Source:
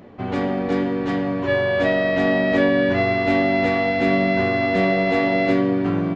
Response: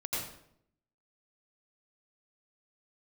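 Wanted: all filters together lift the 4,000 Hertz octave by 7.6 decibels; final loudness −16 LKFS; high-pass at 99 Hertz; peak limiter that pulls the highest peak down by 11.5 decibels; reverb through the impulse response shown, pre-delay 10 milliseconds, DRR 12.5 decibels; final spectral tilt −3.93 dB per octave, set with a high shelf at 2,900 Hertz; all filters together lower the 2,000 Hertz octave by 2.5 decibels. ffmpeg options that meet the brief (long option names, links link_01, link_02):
-filter_complex "[0:a]highpass=99,equalizer=frequency=2000:width_type=o:gain=-6,highshelf=frequency=2900:gain=4,equalizer=frequency=4000:width_type=o:gain=8,alimiter=limit=-18dB:level=0:latency=1,asplit=2[link_01][link_02];[1:a]atrim=start_sample=2205,adelay=10[link_03];[link_02][link_03]afir=irnorm=-1:irlink=0,volume=-17dB[link_04];[link_01][link_04]amix=inputs=2:normalize=0,volume=10dB"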